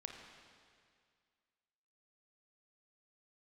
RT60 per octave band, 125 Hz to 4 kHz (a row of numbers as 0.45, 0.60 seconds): 2.1, 2.1, 2.1, 2.1, 2.1, 2.0 seconds